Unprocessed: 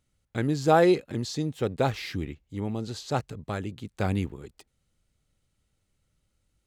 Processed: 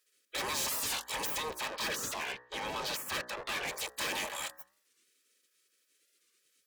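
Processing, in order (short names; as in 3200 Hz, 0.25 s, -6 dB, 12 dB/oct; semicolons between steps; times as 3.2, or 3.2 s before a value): self-modulated delay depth 0.43 ms; 1.4–3.68 air absorption 220 m; sine folder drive 15 dB, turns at -7.5 dBFS; Butterworth band-stop 780 Hz, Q 0.7; high shelf 3800 Hz +4.5 dB; sample leveller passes 3; spectral gate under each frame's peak -25 dB weak; soft clip -28 dBFS, distortion -2 dB; notch comb 700 Hz; de-hum 61.76 Hz, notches 31; record warp 45 rpm, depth 160 cents; gain -2.5 dB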